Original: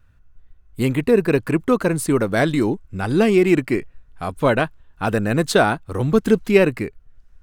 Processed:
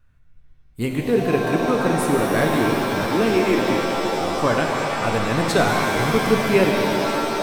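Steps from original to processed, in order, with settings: 3.06–3.59 s: steep high-pass 190 Hz 48 dB/octave; pitch-shifted reverb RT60 4 s, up +7 st, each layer -2 dB, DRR 0.5 dB; trim -4.5 dB

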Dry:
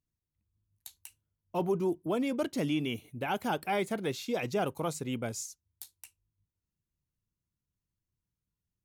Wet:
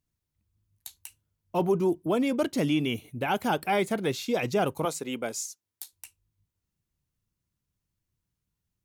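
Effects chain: 4.85–5.93 s: high-pass 290 Hz 12 dB/octave; trim +5 dB

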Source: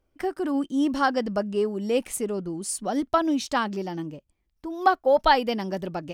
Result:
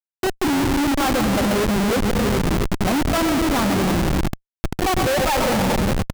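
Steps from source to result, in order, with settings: fade out at the end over 0.68 s; low-pass 2.3 kHz 12 dB/octave; bass shelf 110 Hz +9 dB; feedback delay 409 ms, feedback 31%, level -18 dB; on a send at -4.5 dB: reverberation RT60 1.8 s, pre-delay 95 ms; on the sum: granulator 173 ms, grains 11 per s, spray 13 ms, pitch spread up and down by 0 st; band-stop 440 Hz, Q 12; Schmitt trigger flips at -29 dBFS; trim +7.5 dB

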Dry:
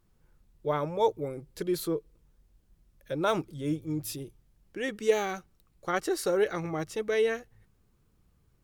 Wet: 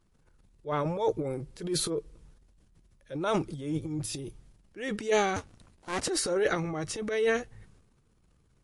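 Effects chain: 5.36–6.08 s: cycle switcher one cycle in 2, inverted; transient shaper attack -8 dB, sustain +10 dB; MP3 48 kbps 24 kHz

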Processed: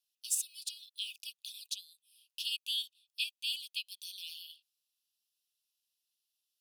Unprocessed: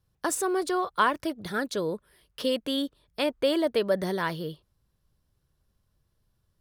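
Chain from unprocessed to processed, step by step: Chebyshev high-pass 2.5 kHz, order 10

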